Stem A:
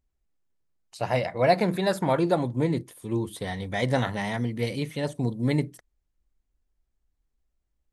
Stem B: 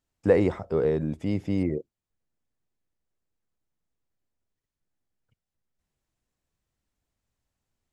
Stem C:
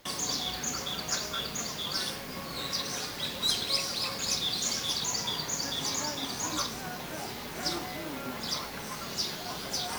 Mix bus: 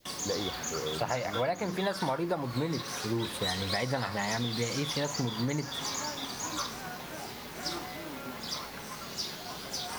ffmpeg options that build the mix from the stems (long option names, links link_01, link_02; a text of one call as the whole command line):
ffmpeg -i stem1.wav -i stem2.wav -i stem3.wav -filter_complex "[0:a]volume=-0.5dB[link_01];[1:a]volume=-13dB[link_02];[2:a]volume=-3.5dB[link_03];[link_01][link_02][link_03]amix=inputs=3:normalize=0,adynamicequalizer=threshold=0.00891:dfrequency=1200:dqfactor=0.86:tfrequency=1200:tqfactor=0.86:attack=5:release=100:ratio=0.375:range=3.5:mode=boostabove:tftype=bell,acompressor=threshold=-27dB:ratio=12" out.wav